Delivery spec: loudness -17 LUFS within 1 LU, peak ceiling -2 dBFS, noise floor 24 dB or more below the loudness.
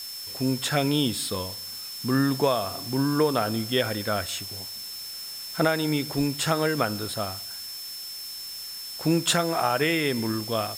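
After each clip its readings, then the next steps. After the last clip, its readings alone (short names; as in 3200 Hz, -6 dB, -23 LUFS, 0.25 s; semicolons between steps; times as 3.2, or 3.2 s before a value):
steady tone 5300 Hz; tone level -36 dBFS; noise floor -37 dBFS; noise floor target -51 dBFS; loudness -26.5 LUFS; peak -8.5 dBFS; loudness target -17.0 LUFS
-> notch 5300 Hz, Q 30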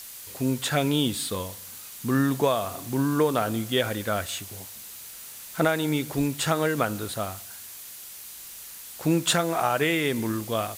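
steady tone none; noise floor -42 dBFS; noise floor target -50 dBFS
-> noise print and reduce 8 dB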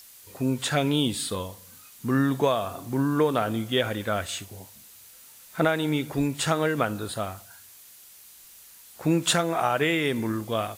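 noise floor -50 dBFS; loudness -26.0 LUFS; peak -9.0 dBFS; loudness target -17.0 LUFS
-> gain +9 dB; limiter -2 dBFS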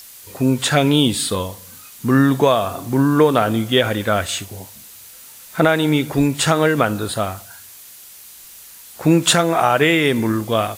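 loudness -17.0 LUFS; peak -2.0 dBFS; noise floor -41 dBFS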